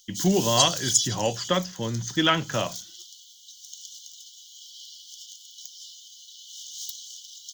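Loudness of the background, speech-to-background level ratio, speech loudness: -29.5 LUFS, 4.0 dB, -25.5 LUFS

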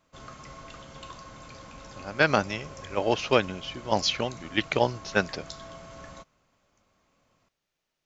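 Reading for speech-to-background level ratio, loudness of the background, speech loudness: 18.0 dB, -45.0 LUFS, -27.0 LUFS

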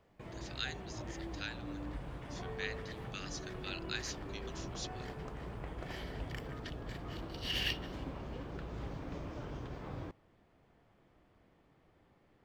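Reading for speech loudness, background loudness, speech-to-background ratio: -45.0 LUFS, -43.5 LUFS, -1.5 dB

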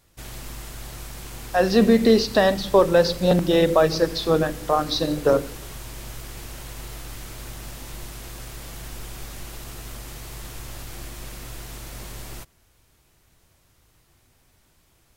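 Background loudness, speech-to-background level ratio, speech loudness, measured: -37.5 LUFS, 18.0 dB, -19.5 LUFS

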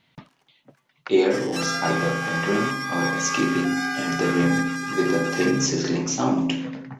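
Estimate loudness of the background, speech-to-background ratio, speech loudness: -27.5 LUFS, 3.5 dB, -24.0 LUFS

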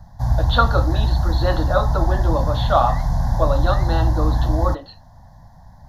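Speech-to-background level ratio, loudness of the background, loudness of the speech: -2.5 dB, -21.0 LUFS, -23.5 LUFS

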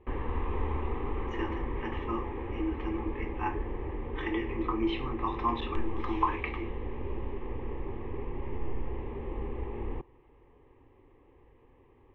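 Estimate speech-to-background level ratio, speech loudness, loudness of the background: 3.0 dB, -35.0 LUFS, -38.0 LUFS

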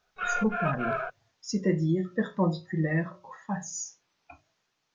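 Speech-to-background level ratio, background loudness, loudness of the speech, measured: 1.0 dB, -31.5 LUFS, -30.5 LUFS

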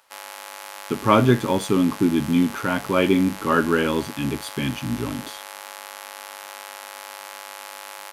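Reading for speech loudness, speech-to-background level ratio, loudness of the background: -21.5 LUFS, 15.0 dB, -36.5 LUFS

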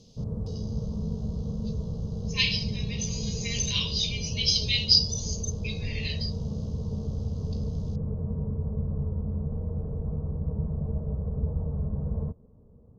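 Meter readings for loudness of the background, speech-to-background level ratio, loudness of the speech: -32.5 LUFS, 5.5 dB, -27.0 LUFS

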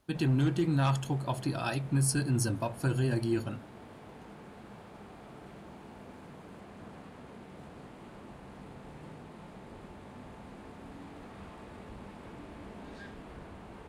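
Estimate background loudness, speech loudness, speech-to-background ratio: -49.0 LUFS, -30.0 LUFS, 19.0 dB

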